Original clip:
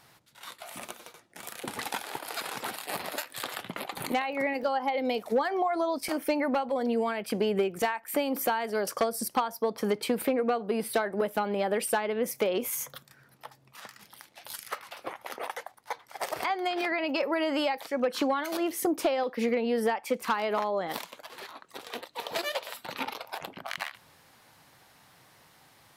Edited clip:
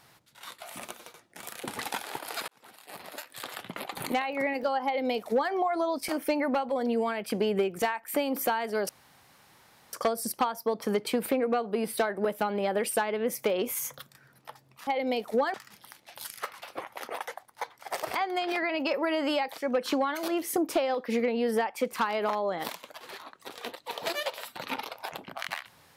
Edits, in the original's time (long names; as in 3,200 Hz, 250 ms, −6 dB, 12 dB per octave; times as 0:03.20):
0:02.48–0:03.97: fade in
0:04.85–0:05.52: duplicate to 0:13.83
0:08.89: splice in room tone 1.04 s